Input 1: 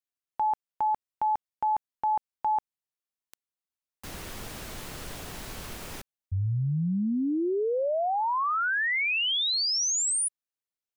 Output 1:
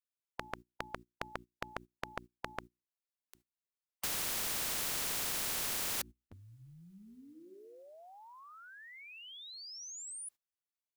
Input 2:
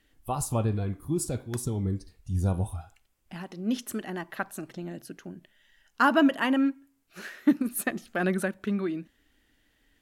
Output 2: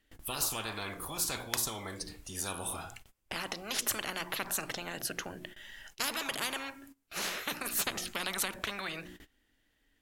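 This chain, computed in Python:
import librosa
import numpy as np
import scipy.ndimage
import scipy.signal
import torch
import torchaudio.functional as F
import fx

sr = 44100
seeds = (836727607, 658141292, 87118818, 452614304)

y = fx.hum_notches(x, sr, base_hz=60, count=6)
y = fx.gate_hold(y, sr, open_db=-55.0, close_db=-58.0, hold_ms=34.0, range_db=-20, attack_ms=0.15, release_ms=30.0)
y = fx.spectral_comp(y, sr, ratio=10.0)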